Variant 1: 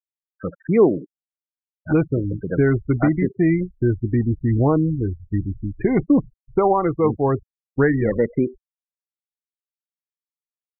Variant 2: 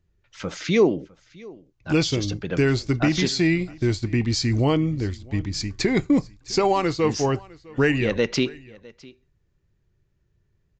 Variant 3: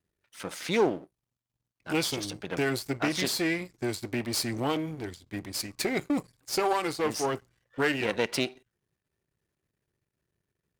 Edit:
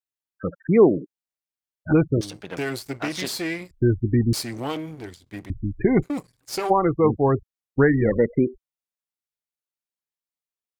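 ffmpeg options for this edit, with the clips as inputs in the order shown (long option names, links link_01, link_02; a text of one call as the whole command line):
ffmpeg -i take0.wav -i take1.wav -i take2.wav -filter_complex "[2:a]asplit=3[link_01][link_02][link_03];[0:a]asplit=4[link_04][link_05][link_06][link_07];[link_04]atrim=end=2.212[link_08];[link_01]atrim=start=2.208:end=3.712[link_09];[link_05]atrim=start=3.708:end=4.332[link_10];[link_02]atrim=start=4.328:end=5.502[link_11];[link_06]atrim=start=5.498:end=6.04[link_12];[link_03]atrim=start=6.02:end=6.71[link_13];[link_07]atrim=start=6.69[link_14];[link_08][link_09]acrossfade=duration=0.004:curve1=hsin:curve2=hsin[link_15];[link_15][link_10]acrossfade=duration=0.004:curve1=hsin:curve2=hsin[link_16];[link_16][link_11]acrossfade=duration=0.004:curve1=hsin:curve2=hsin[link_17];[link_17][link_12]acrossfade=duration=0.004:curve1=hsin:curve2=hsin[link_18];[link_18][link_13]acrossfade=duration=0.02:curve1=tri:curve2=tri[link_19];[link_19][link_14]acrossfade=duration=0.02:curve1=tri:curve2=tri" out.wav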